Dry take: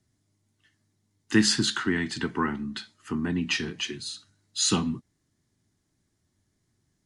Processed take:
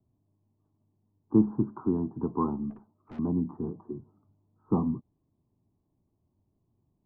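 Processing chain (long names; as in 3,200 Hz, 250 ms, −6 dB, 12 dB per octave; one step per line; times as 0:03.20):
Butterworth low-pass 1,100 Hz 72 dB per octave
0:02.70–0:03.19: tube saturation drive 42 dB, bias 0.45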